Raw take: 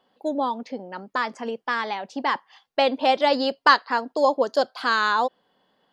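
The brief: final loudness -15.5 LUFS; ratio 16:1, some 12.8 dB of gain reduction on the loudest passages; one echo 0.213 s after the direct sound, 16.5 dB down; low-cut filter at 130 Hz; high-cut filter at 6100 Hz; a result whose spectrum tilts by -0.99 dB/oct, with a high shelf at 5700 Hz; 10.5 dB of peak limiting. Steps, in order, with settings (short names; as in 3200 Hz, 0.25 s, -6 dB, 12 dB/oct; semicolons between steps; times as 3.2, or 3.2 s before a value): HPF 130 Hz; LPF 6100 Hz; high shelf 5700 Hz +4.5 dB; compressor 16:1, threshold -22 dBFS; limiter -22 dBFS; echo 0.213 s -16.5 dB; gain +17.5 dB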